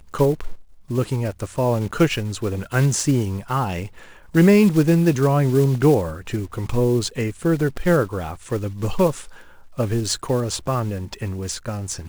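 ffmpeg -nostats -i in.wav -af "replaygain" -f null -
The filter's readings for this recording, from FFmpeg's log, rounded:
track_gain = +0.1 dB
track_peak = 0.450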